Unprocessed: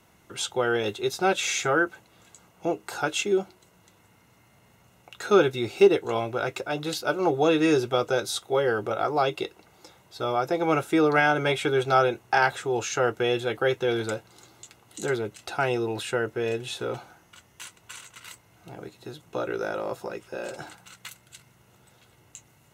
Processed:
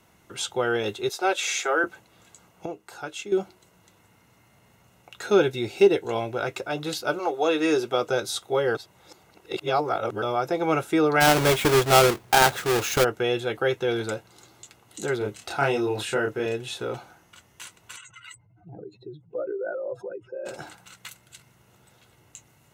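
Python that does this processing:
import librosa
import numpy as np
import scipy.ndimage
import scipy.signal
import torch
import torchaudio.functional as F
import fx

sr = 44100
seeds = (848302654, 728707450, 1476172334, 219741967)

y = fx.highpass(x, sr, hz=350.0, slope=24, at=(1.09, 1.84))
y = fx.peak_eq(y, sr, hz=1200.0, db=-8.5, octaves=0.23, at=(5.25, 6.39))
y = fx.highpass(y, sr, hz=fx.line((7.18, 590.0), (8.08, 140.0)), slope=12, at=(7.18, 8.08), fade=0.02)
y = fx.halfwave_hold(y, sr, at=(11.2, 13.03), fade=0.02)
y = fx.doubler(y, sr, ms=29.0, db=-2, at=(15.18, 16.46))
y = fx.spec_expand(y, sr, power=2.7, at=(17.96, 20.45), fade=0.02)
y = fx.edit(y, sr, fx.clip_gain(start_s=2.66, length_s=0.66, db=-8.5),
    fx.reverse_span(start_s=8.75, length_s=1.47), tone=tone)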